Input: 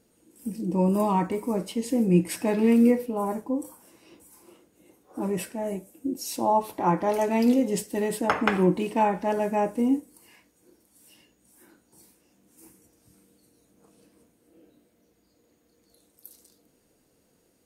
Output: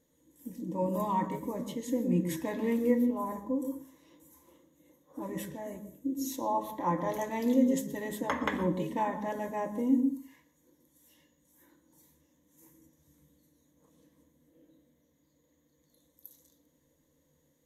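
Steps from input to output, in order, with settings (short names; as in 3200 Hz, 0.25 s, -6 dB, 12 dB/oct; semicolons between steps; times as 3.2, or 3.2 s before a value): ripple EQ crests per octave 1.1, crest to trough 12 dB; on a send: reverb RT60 0.40 s, pre-delay 0.113 s, DRR 12.5 dB; on the sum: gain -8.5 dB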